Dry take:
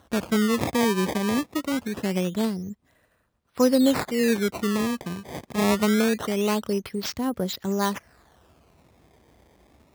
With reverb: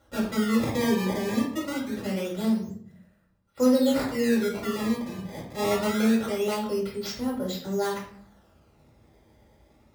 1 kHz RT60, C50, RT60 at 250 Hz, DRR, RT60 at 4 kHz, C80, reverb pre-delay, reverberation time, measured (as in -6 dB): 0.55 s, 5.5 dB, 0.80 s, -5.5 dB, 0.45 s, 9.0 dB, 4 ms, 0.60 s